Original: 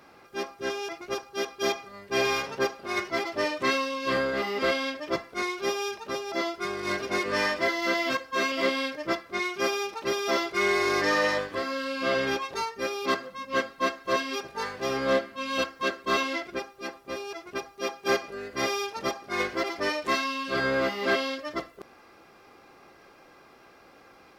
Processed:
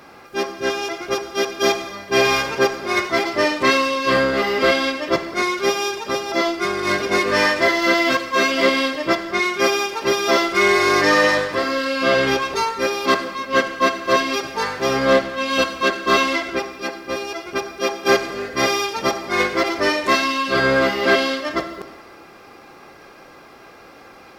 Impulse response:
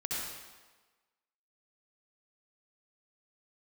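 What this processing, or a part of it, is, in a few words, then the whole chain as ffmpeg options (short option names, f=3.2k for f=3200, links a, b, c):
saturated reverb return: -filter_complex "[0:a]asplit=2[a][b];[1:a]atrim=start_sample=2205[c];[b][c]afir=irnorm=-1:irlink=0,asoftclip=type=tanh:threshold=-22dB,volume=-10dB[d];[a][d]amix=inputs=2:normalize=0,volume=8dB"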